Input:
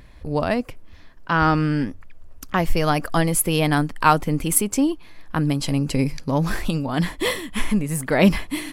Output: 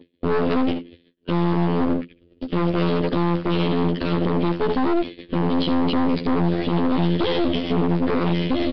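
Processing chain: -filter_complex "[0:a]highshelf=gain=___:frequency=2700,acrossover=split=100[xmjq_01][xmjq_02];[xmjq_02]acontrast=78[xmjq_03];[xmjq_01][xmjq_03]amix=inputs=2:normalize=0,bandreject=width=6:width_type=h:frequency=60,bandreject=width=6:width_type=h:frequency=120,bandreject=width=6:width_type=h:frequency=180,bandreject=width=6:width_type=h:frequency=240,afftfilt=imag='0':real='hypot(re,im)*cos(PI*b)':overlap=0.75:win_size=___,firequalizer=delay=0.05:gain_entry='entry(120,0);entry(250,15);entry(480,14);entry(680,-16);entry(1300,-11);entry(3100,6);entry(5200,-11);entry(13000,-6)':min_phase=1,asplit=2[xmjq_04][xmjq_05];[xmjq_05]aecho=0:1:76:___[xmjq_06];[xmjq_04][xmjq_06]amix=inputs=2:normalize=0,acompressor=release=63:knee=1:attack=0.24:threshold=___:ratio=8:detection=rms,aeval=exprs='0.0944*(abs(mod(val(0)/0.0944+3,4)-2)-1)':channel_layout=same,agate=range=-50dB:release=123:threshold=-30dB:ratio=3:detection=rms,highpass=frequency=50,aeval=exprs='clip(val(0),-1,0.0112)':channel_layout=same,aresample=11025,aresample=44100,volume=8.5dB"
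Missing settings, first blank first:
6, 2048, 0.237, -19dB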